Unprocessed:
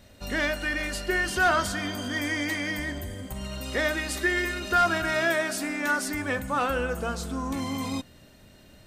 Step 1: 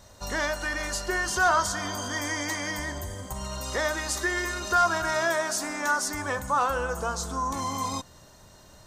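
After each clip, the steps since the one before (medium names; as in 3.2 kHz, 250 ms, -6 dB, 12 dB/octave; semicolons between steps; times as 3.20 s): fifteen-band graphic EQ 250 Hz -7 dB, 1 kHz +10 dB, 2.5 kHz -7 dB, 6.3 kHz +10 dB; in parallel at -3 dB: compression, threshold -30 dBFS, peak gain reduction 14.5 dB; on the sum: trim -4 dB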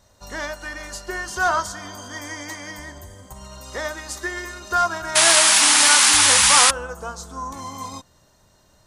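painted sound noise, 5.15–6.71 s, 760–11000 Hz -18 dBFS; upward expansion 1.5:1, over -35 dBFS; trim +4 dB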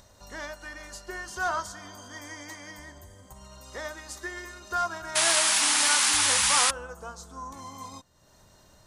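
upward compressor, threshold -38 dBFS; trim -8.5 dB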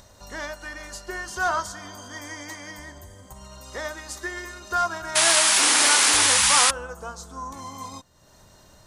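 painted sound noise, 5.57–6.27 s, 250–2500 Hz -35 dBFS; trim +4.5 dB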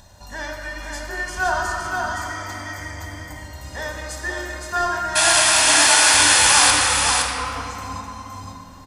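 delay 516 ms -4 dB; reverberation RT60 2.8 s, pre-delay 13 ms, DRR 1 dB; trim -1.5 dB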